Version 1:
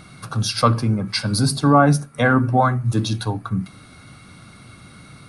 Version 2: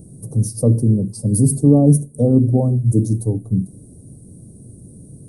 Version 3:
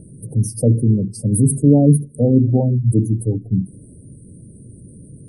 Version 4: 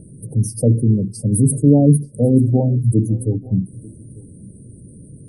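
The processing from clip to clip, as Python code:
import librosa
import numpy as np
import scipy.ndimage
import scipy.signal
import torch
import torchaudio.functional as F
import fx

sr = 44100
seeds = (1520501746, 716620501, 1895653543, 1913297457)

y1 = scipy.signal.sosfilt(scipy.signal.ellip(3, 1.0, 80, [460.0, 8500.0], 'bandstop', fs=sr, output='sos'), x)
y1 = y1 * 10.0 ** (5.5 / 20.0)
y2 = fx.spec_gate(y1, sr, threshold_db=-30, keep='strong')
y3 = y2 + 10.0 ** (-23.0 / 20.0) * np.pad(y2, (int(891 * sr / 1000.0), 0))[:len(y2)]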